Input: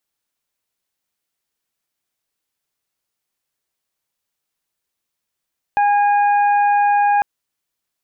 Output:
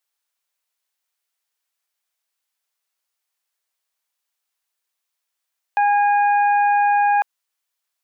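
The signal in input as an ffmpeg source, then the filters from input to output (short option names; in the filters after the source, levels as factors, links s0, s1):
-f lavfi -i "aevalsrc='0.251*sin(2*PI*819*t)+0.0668*sin(2*PI*1638*t)+0.0282*sin(2*PI*2457*t)':d=1.45:s=44100"
-af "highpass=680"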